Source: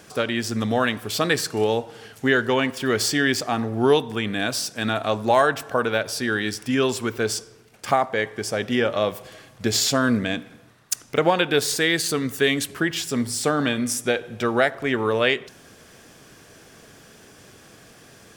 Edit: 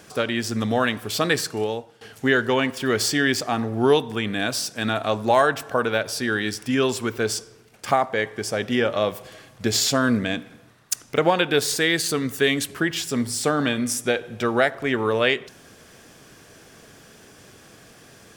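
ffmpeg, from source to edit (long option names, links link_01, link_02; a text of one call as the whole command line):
ffmpeg -i in.wav -filter_complex "[0:a]asplit=2[link_01][link_02];[link_01]atrim=end=2.01,asetpts=PTS-STARTPTS,afade=type=out:start_time=1.38:duration=0.63:silence=0.149624[link_03];[link_02]atrim=start=2.01,asetpts=PTS-STARTPTS,afade=type=in:duration=0.004:curve=hsin:silence=0.149624[link_04];[link_03][link_04]concat=n=2:v=0:a=1" out.wav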